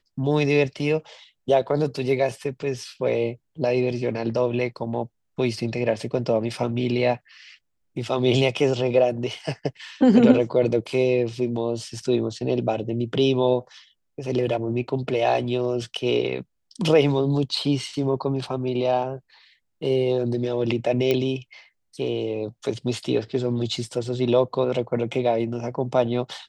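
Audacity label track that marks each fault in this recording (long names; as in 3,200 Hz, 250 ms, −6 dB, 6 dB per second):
21.110000	21.110000	click −10 dBFS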